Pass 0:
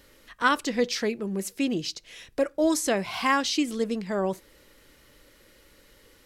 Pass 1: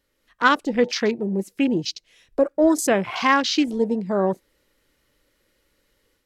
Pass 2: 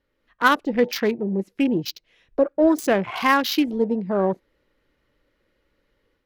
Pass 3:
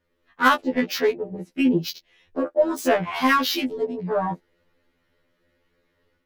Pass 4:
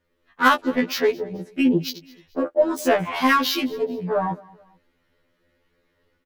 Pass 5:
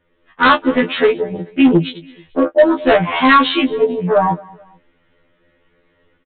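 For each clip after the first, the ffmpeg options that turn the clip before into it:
-af "afwtdn=0.0178,dynaudnorm=f=150:g=3:m=2"
-af "adynamicsmooth=sensitivity=1.5:basefreq=3300,aexciter=amount=2.7:drive=9:freq=11000"
-af "afftfilt=real='re*2*eq(mod(b,4),0)':imag='im*2*eq(mod(b,4),0)':win_size=2048:overlap=0.75,volume=1.41"
-af "aecho=1:1:217|434:0.0708|0.0262,volume=1.12"
-filter_complex "[0:a]aresample=8000,asoftclip=type=hard:threshold=0.188,aresample=44100,asplit=2[s0][s1];[s1]adelay=18,volume=0.335[s2];[s0][s2]amix=inputs=2:normalize=0,volume=2.66"

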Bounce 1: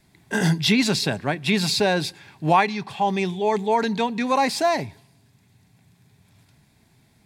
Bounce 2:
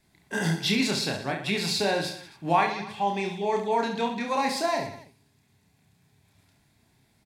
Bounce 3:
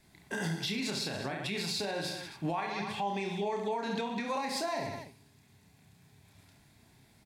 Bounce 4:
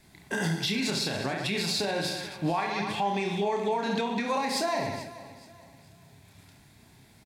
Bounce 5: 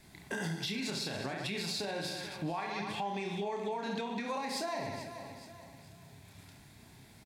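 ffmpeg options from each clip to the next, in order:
-filter_complex "[0:a]equalizer=f=140:w=1.1:g=-3.5,asplit=2[s0][s1];[s1]aecho=0:1:30|69|119.7|185.6|271.3:0.631|0.398|0.251|0.158|0.1[s2];[s0][s2]amix=inputs=2:normalize=0,volume=0.473"
-af "acompressor=threshold=0.0355:ratio=2.5,alimiter=level_in=1.5:limit=0.0631:level=0:latency=1:release=202,volume=0.668,volume=1.41"
-af "aecho=1:1:431|862|1293:0.141|0.0509|0.0183,volume=1.88"
-af "acompressor=threshold=0.01:ratio=2"

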